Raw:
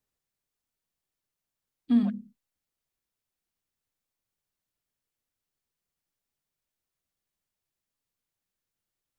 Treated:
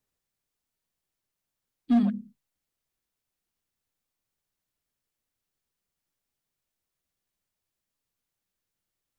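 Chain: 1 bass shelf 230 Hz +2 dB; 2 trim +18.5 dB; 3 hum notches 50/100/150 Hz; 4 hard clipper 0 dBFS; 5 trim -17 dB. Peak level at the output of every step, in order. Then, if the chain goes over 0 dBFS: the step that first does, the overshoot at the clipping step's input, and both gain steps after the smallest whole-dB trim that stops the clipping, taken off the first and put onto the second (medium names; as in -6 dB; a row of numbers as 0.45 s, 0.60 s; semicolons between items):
-13.5 dBFS, +5.0 dBFS, +5.0 dBFS, 0.0 dBFS, -17.0 dBFS; step 2, 5.0 dB; step 2 +13.5 dB, step 5 -12 dB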